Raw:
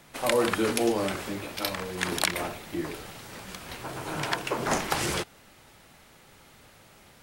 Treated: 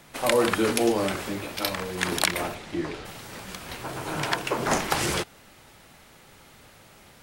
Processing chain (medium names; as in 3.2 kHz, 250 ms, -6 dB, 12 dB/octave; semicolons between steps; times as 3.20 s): 2.54–3.04 s: low-pass 8.6 kHz -> 5.1 kHz 12 dB/octave; trim +2.5 dB